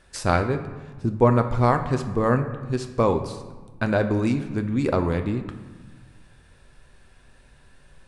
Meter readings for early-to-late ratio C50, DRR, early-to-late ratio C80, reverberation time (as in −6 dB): 10.0 dB, 6.5 dB, 12.0 dB, 1.3 s